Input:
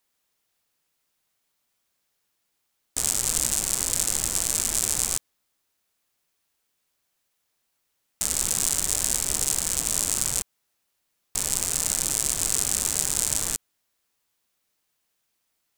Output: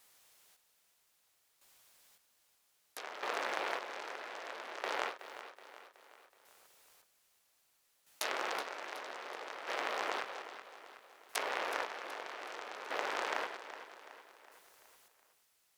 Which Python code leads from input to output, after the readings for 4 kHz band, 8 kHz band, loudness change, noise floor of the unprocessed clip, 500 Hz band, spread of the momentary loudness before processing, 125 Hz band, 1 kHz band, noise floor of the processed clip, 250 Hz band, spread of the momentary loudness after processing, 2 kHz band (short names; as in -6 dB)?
-13.0 dB, -31.0 dB, -16.5 dB, -76 dBFS, -0.5 dB, 6 LU, under -35 dB, +2.0 dB, -74 dBFS, -13.0 dB, 18 LU, -0.5 dB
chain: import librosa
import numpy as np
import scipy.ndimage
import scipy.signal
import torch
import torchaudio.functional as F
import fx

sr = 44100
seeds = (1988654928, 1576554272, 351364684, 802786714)

p1 = fx.self_delay(x, sr, depth_ms=0.66)
p2 = fx.env_lowpass_down(p1, sr, base_hz=1900.0, full_db=-31.0)
p3 = scipy.signal.sosfilt(scipy.signal.butter(4, 430.0, 'highpass', fs=sr, output='sos'), p2)
p4 = fx.over_compress(p3, sr, threshold_db=-48.0, ratio=-1.0)
p5 = p3 + F.gain(torch.from_numpy(p4), -3.0).numpy()
p6 = fx.quant_dither(p5, sr, seeds[0], bits=12, dither='triangular')
p7 = fx.chopper(p6, sr, hz=0.62, depth_pct=65, duty_pct=35)
p8 = p7 + fx.echo_feedback(p7, sr, ms=373, feedback_pct=50, wet_db=-12.5, dry=0)
p9 = fx.end_taper(p8, sr, db_per_s=180.0)
y = F.gain(torch.from_numpy(p9), 1.5).numpy()